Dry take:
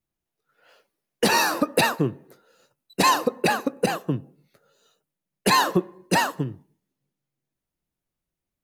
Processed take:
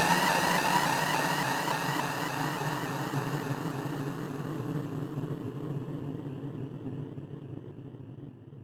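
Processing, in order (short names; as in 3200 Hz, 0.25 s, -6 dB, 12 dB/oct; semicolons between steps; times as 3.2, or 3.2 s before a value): Paulstretch 24×, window 0.50 s, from 6.24; power-law curve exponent 1.4; shaped vibrato saw up 3.5 Hz, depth 100 cents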